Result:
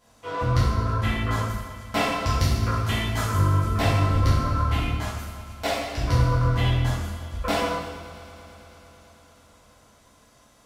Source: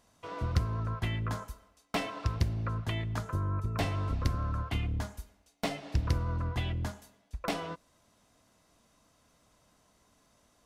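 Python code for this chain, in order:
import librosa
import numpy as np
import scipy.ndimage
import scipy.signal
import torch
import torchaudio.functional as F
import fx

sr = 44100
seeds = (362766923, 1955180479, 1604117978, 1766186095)

p1 = fx.high_shelf(x, sr, hz=4300.0, db=9.0, at=(2.19, 3.66))
p2 = fx.highpass(p1, sr, hz=350.0, slope=12, at=(4.89, 5.98))
p3 = p2 + fx.echo_heads(p2, sr, ms=110, heads='all three', feedback_pct=73, wet_db=-22, dry=0)
y = fx.rev_plate(p3, sr, seeds[0], rt60_s=1.0, hf_ratio=0.95, predelay_ms=0, drr_db=-10.0)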